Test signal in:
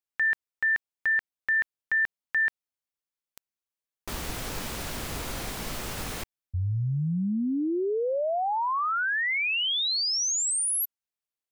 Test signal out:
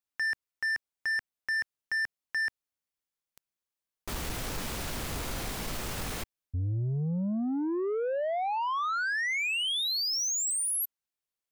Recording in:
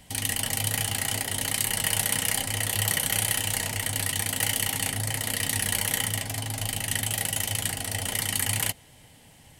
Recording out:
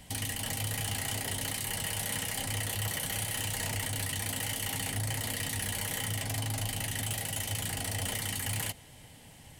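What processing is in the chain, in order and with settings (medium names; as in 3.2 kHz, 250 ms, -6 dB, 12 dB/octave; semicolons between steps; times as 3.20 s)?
bass shelf 160 Hz +2 dB; peak limiter -17.5 dBFS; saturation -27 dBFS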